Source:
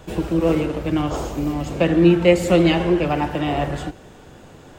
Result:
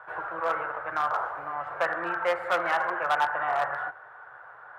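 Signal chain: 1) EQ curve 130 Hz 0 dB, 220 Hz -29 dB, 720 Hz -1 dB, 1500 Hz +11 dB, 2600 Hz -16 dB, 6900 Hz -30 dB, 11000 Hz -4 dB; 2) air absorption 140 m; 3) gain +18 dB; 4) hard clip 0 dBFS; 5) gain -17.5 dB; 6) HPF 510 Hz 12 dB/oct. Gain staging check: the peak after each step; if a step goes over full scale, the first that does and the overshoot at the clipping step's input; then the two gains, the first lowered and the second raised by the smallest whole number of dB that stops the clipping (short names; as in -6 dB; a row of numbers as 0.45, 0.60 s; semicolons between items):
-9.0, -9.5, +8.5, 0.0, -17.5, -13.0 dBFS; step 3, 8.5 dB; step 3 +9 dB, step 5 -8.5 dB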